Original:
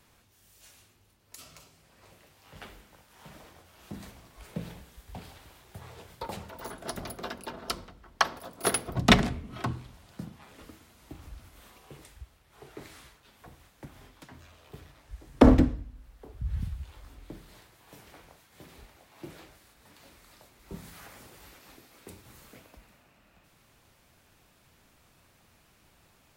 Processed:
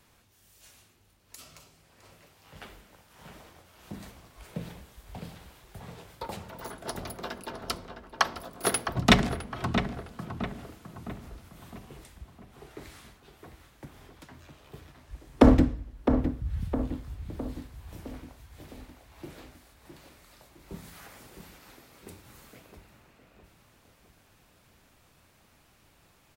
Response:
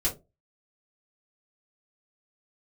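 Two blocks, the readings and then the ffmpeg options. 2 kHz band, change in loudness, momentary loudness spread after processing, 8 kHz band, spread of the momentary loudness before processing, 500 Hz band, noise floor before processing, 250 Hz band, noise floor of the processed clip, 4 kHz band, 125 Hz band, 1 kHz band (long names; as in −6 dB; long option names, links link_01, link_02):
+0.5 dB, −0.5 dB, 26 LU, 0.0 dB, 26 LU, +1.0 dB, −64 dBFS, +1.0 dB, −63 dBFS, 0.0 dB, +1.0 dB, +0.5 dB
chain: -filter_complex "[0:a]asplit=2[link_01][link_02];[link_02]adelay=660,lowpass=frequency=2100:poles=1,volume=-7.5dB,asplit=2[link_03][link_04];[link_04]adelay=660,lowpass=frequency=2100:poles=1,volume=0.5,asplit=2[link_05][link_06];[link_06]adelay=660,lowpass=frequency=2100:poles=1,volume=0.5,asplit=2[link_07][link_08];[link_08]adelay=660,lowpass=frequency=2100:poles=1,volume=0.5,asplit=2[link_09][link_10];[link_10]adelay=660,lowpass=frequency=2100:poles=1,volume=0.5,asplit=2[link_11][link_12];[link_12]adelay=660,lowpass=frequency=2100:poles=1,volume=0.5[link_13];[link_01][link_03][link_05][link_07][link_09][link_11][link_13]amix=inputs=7:normalize=0"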